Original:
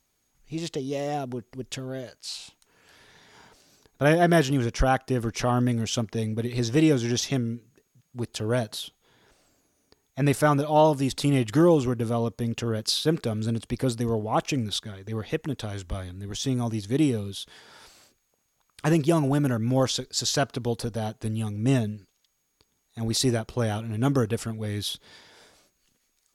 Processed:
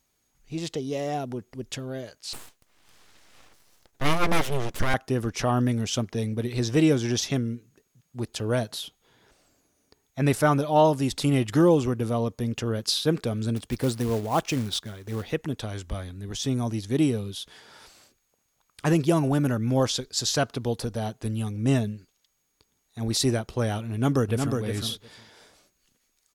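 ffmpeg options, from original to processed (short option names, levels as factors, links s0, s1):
-filter_complex "[0:a]asettb=1/sr,asplit=3[s0][s1][s2];[s0]atrim=end=2.334[s3];[s1]atrim=start=2.33:end=4.94,asetpts=PTS-STARTPTS,afade=t=in:d=0.004:c=qsin,afade=t=out:st=2.606:d=0.004:c=qsin,aeval=exprs='abs(val(0))':c=same[s4];[s2]atrim=start=4.936[s5];[s3][s4]acrossfade=d=0.004:c1=hsin:c2=qsin[s6];[s6][s5]acrossfade=d=0.004:c1=qsin:c2=hsin,asettb=1/sr,asplit=3[s7][s8][s9];[s7]atrim=end=13.564[s10];[s8]atrim=start=13.56:end=15.32,asetpts=PTS-STARTPTS,afade=t=in:d=0.004:c=qsin,afade=t=out:st=1.756:d=0.004:c=qsin,acrusher=bits=4:mode=log:mix=0:aa=0.000001[s11];[s9]atrim=start=15.316[s12];[s10][s11]acrossfade=d=0.004:c1=hsin:c2=qsin[s13];[s13][s12]acrossfade=d=0.004:c1=qsin:c2=hsin,asplit=2[s14][s15];[s15]afade=t=in:st=23.92:d=0.01,afade=t=out:st=24.57:d=0.01,aecho=0:1:360|720:0.595662|0.0595662[s16];[s14][s16]amix=inputs=2:normalize=0"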